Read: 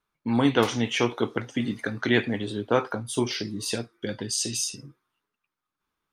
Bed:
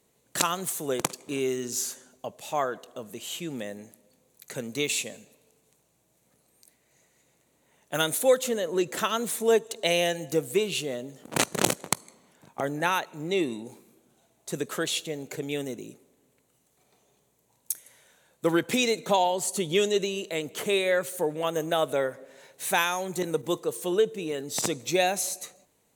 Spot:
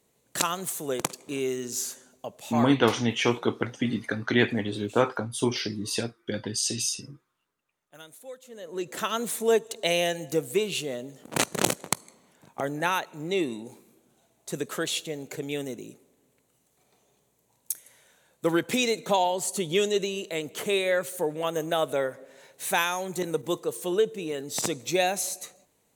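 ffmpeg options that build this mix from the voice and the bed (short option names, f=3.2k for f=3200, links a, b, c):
-filter_complex "[0:a]adelay=2250,volume=0dB[a];[1:a]volume=20dB,afade=t=out:st=2.52:d=0.46:silence=0.0944061,afade=t=in:st=8.48:d=0.71:silence=0.0891251[b];[a][b]amix=inputs=2:normalize=0"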